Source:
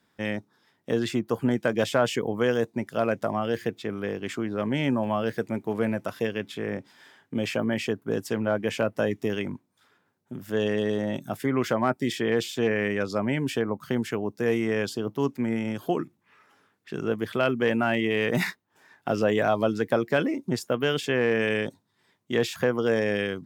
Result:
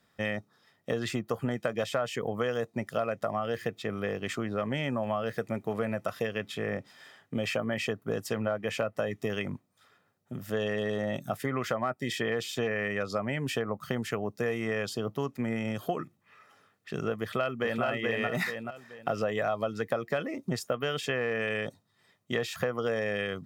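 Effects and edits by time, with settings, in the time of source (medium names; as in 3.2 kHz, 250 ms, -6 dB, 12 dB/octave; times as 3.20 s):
17.21–17.84 s: echo throw 430 ms, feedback 25%, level -1 dB
whole clip: dynamic bell 1.3 kHz, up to +4 dB, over -36 dBFS, Q 0.85; comb 1.6 ms, depth 44%; compression 5:1, threshold -27 dBFS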